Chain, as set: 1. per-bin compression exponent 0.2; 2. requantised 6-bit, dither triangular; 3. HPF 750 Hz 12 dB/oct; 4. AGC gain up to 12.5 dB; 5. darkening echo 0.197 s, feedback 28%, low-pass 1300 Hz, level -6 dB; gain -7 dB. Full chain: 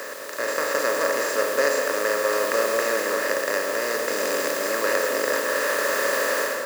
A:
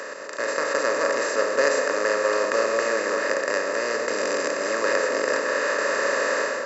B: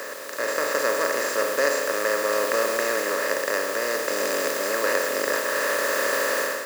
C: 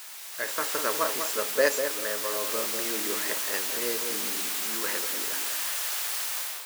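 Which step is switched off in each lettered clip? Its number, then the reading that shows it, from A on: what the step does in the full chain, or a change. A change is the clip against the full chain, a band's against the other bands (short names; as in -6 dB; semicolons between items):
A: 2, distortion -17 dB; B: 5, echo-to-direct -9.0 dB to none; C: 1, 8 kHz band +8.5 dB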